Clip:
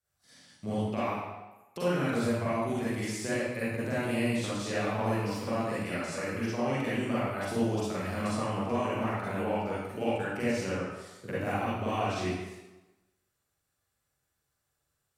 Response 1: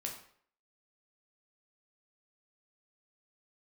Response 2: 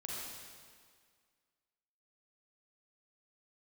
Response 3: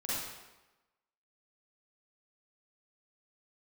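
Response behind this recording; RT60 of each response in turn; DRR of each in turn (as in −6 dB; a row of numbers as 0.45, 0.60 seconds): 3; 0.60, 1.9, 1.1 seconds; 0.0, −5.0, −10.0 decibels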